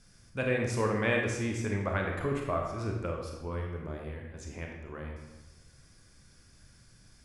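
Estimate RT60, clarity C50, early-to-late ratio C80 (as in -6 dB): 1.1 s, 3.0 dB, 5.0 dB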